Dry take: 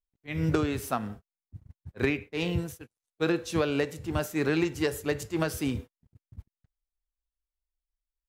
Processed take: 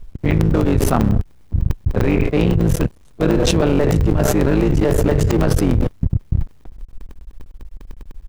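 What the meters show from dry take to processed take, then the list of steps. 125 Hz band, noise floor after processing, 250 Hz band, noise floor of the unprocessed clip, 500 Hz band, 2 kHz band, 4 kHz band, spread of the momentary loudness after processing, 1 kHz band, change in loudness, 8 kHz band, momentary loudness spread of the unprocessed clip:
+17.5 dB, -46 dBFS, +13.0 dB, under -85 dBFS, +11.5 dB, +5.0 dB, +9.0 dB, 7 LU, +10.5 dB, +12.0 dB, +12.0 dB, 12 LU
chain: cycle switcher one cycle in 3, muted; tilt EQ -3.5 dB/octave; crackling interface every 0.10 s, samples 64, zero, from 0.31 s; level flattener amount 100%; trim -1 dB

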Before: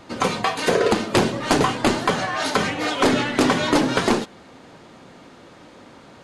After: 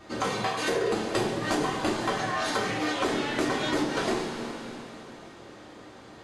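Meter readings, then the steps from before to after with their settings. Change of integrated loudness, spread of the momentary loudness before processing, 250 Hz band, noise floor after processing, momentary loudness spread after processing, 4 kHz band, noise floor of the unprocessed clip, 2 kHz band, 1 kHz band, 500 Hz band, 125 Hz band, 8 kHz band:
-8.0 dB, 4 LU, -8.0 dB, -48 dBFS, 19 LU, -7.0 dB, -46 dBFS, -6.5 dB, -7.0 dB, -7.0 dB, -8.5 dB, -7.0 dB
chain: two-slope reverb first 0.41 s, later 3.2 s, from -17 dB, DRR -5 dB; compression 3:1, threshold -18 dBFS, peak gain reduction 9 dB; trim -8 dB

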